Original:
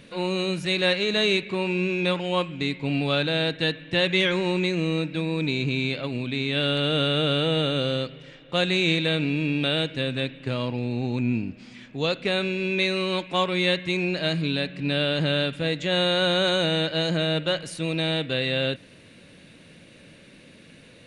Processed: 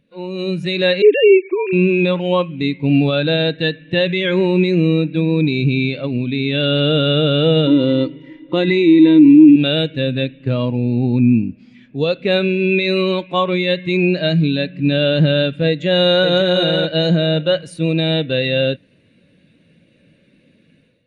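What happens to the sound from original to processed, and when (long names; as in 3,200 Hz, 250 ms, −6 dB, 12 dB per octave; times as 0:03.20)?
0:01.02–0:01.73: three sine waves on the formant tracks
0:07.67–0:09.56: hollow resonant body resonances 310/960/2,000 Hz, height 18 dB, ringing for 85 ms
0:15.67–0:16.29: delay throw 560 ms, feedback 15%, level −1.5 dB
whole clip: brickwall limiter −16 dBFS; automatic gain control gain up to 8 dB; every bin expanded away from the loudest bin 1.5 to 1; level +7 dB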